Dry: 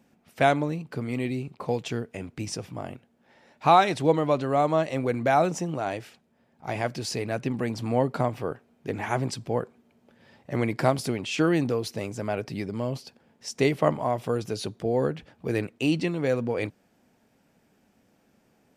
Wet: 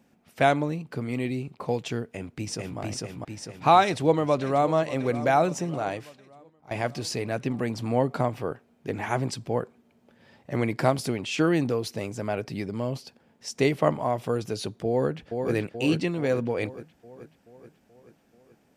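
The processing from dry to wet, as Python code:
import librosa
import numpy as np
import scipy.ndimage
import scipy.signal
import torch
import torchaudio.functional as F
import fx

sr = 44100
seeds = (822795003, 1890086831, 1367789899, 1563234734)

y = fx.echo_throw(x, sr, start_s=2.05, length_s=0.74, ms=450, feedback_pct=55, wet_db=-0.5)
y = fx.echo_throw(y, sr, start_s=3.82, length_s=0.9, ms=590, feedback_pct=60, wet_db=-14.5)
y = fx.echo_throw(y, sr, start_s=14.88, length_s=0.65, ms=430, feedback_pct=60, wet_db=-5.0)
y = fx.edit(y, sr, fx.fade_out_to(start_s=5.87, length_s=0.84, floor_db=-17.0), tone=tone)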